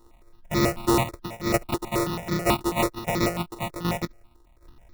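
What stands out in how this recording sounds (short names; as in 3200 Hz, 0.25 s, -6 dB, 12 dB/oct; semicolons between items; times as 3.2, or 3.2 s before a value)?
a buzz of ramps at a fixed pitch in blocks of 128 samples; tremolo saw down 1.3 Hz, depth 70%; aliases and images of a low sample rate 1600 Hz, jitter 0%; notches that jump at a steady rate 9.2 Hz 630–2800 Hz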